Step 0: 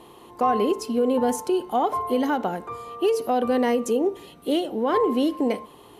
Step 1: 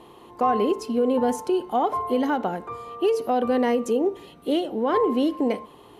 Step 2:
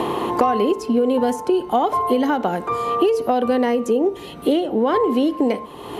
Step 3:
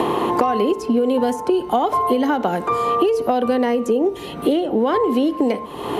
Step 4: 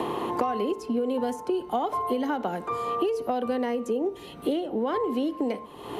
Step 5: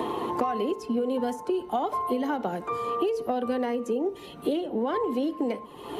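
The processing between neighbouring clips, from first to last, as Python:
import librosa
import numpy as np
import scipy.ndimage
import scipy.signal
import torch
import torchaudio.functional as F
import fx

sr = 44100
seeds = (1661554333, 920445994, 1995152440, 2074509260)

y1 = fx.high_shelf(x, sr, hz=5800.0, db=-7.5)
y2 = fx.band_squash(y1, sr, depth_pct=100)
y2 = y2 * librosa.db_to_amplitude(3.5)
y3 = fx.band_squash(y2, sr, depth_pct=70)
y4 = fx.band_widen(y3, sr, depth_pct=40)
y4 = y4 * librosa.db_to_amplitude(-9.0)
y5 = fx.spec_quant(y4, sr, step_db=15)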